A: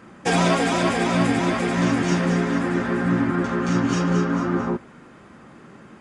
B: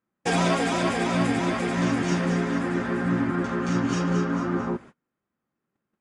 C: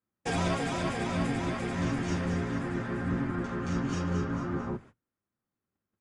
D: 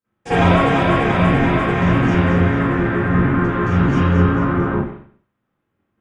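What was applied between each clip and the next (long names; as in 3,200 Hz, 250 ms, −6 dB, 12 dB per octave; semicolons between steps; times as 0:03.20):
noise gate −39 dBFS, range −34 dB; level −3.5 dB
sub-octave generator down 1 octave, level −3 dB; level −7.5 dB
convolution reverb, pre-delay 43 ms, DRR −16.5 dB; level −1 dB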